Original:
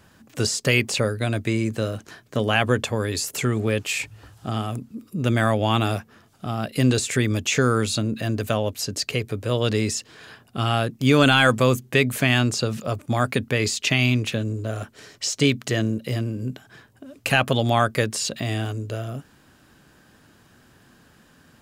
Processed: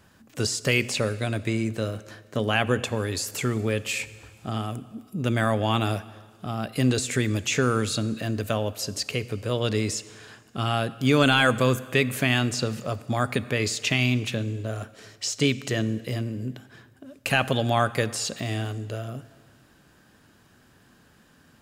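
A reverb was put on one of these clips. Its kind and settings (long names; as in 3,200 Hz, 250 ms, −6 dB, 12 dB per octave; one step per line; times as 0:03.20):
dense smooth reverb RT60 1.7 s, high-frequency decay 0.9×, DRR 15.5 dB
level −3 dB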